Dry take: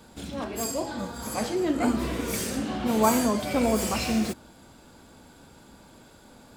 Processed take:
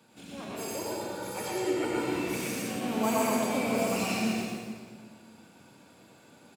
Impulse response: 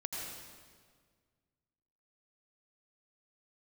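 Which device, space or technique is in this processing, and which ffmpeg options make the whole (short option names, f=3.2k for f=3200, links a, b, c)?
PA in a hall: -filter_complex "[0:a]asettb=1/sr,asplit=3[a][b][c];[a]atrim=end=0.584[d];[b]atrim=start=0.58:end=2.14,asetpts=PTS-STARTPTS,afade=t=in:d=0.004:c=qsin,afade=t=out:st=1.556:d=0.004:c=qsin,aecho=1:1:2.2:0.71,atrim=end_sample=68796[e];[c]atrim=start=2.136[f];[d][e]acrossfade=d=0.004:c1=hsin:c2=qsin[g];[g][f]acrossfade=d=0.004:c1=qsin:c2=hsin,highpass=f=110:w=0.5412,highpass=f=110:w=1.3066,equalizer=f=2.5k:t=o:w=0.36:g=7.5,aecho=1:1:117:0.631[h];[1:a]atrim=start_sample=2205[i];[h][i]afir=irnorm=-1:irlink=0,volume=-7dB"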